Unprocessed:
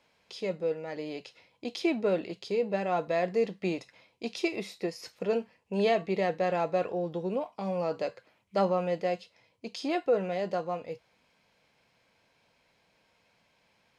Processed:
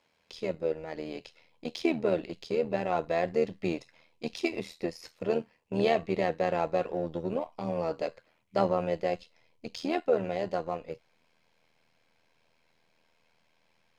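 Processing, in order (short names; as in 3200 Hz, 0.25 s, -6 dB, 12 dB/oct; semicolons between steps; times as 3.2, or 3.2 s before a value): AM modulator 81 Hz, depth 55%; in parallel at -7 dB: backlash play -35 dBFS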